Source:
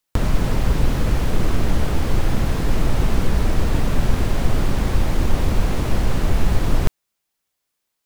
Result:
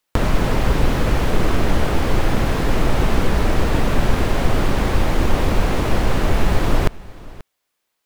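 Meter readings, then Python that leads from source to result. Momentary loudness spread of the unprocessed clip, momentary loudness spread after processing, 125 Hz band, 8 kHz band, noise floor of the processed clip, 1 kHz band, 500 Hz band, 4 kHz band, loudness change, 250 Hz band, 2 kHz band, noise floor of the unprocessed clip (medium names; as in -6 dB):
1 LU, 1 LU, +0.5 dB, +1.5 dB, -75 dBFS, +6.0 dB, +5.5 dB, +4.0 dB, +2.0 dB, +3.0 dB, +6.0 dB, -78 dBFS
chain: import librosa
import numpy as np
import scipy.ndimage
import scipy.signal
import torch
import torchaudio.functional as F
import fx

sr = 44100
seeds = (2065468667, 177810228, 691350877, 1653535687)

y = fx.bass_treble(x, sr, bass_db=-6, treble_db=-5)
y = y + 10.0 ** (-20.5 / 20.0) * np.pad(y, (int(534 * sr / 1000.0), 0))[:len(y)]
y = y * librosa.db_to_amplitude(6.0)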